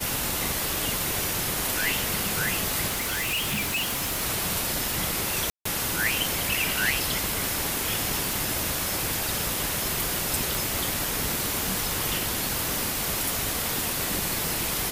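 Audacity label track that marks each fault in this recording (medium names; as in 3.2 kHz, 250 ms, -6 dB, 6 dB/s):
2.870000	4.220000	clipped -24 dBFS
5.500000	5.650000	dropout 154 ms
8.330000	8.330000	pop
10.550000	10.550000	pop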